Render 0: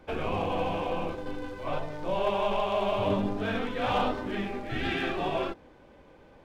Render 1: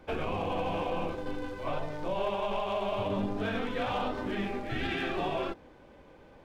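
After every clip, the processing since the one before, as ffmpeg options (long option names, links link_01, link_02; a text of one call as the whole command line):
ffmpeg -i in.wav -af "alimiter=limit=-22.5dB:level=0:latency=1:release=102" out.wav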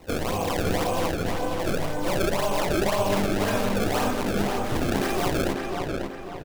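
ffmpeg -i in.wav -filter_complex "[0:a]acrusher=samples=26:mix=1:aa=0.000001:lfo=1:lforange=41.6:lforate=1.9,asplit=2[link_01][link_02];[link_02]adelay=543,lowpass=frequency=3500:poles=1,volume=-3.5dB,asplit=2[link_03][link_04];[link_04]adelay=543,lowpass=frequency=3500:poles=1,volume=0.45,asplit=2[link_05][link_06];[link_06]adelay=543,lowpass=frequency=3500:poles=1,volume=0.45,asplit=2[link_07][link_08];[link_08]adelay=543,lowpass=frequency=3500:poles=1,volume=0.45,asplit=2[link_09][link_10];[link_10]adelay=543,lowpass=frequency=3500:poles=1,volume=0.45,asplit=2[link_11][link_12];[link_12]adelay=543,lowpass=frequency=3500:poles=1,volume=0.45[link_13];[link_03][link_05][link_07][link_09][link_11][link_13]amix=inputs=6:normalize=0[link_14];[link_01][link_14]amix=inputs=2:normalize=0,volume=6dB" out.wav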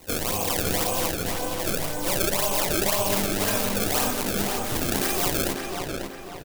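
ffmpeg -i in.wav -af "crystalizer=i=3.5:c=0,volume=-3dB" out.wav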